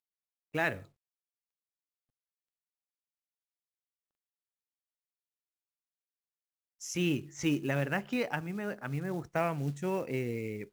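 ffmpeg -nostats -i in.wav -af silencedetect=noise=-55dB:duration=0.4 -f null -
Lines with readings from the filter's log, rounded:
silence_start: 0.00
silence_end: 0.54 | silence_duration: 0.54
silence_start: 0.87
silence_end: 6.81 | silence_duration: 5.93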